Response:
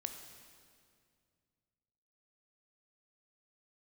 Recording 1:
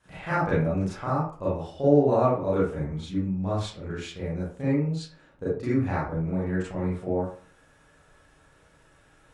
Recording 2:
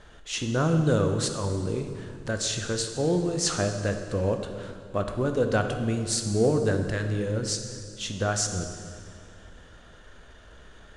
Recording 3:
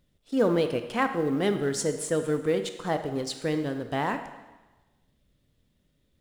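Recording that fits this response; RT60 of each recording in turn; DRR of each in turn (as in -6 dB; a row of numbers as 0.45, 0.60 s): 2; 0.45, 2.2, 1.2 s; -9.5, 5.5, 8.0 dB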